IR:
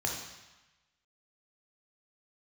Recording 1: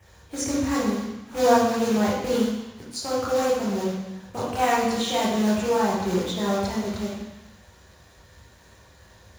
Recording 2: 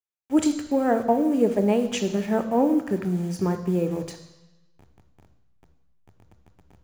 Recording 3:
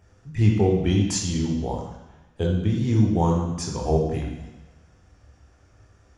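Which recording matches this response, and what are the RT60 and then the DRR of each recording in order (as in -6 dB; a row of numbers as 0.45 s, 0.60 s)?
3; 1.1 s, 1.1 s, 1.1 s; -6.5 dB, 8.5 dB, -0.5 dB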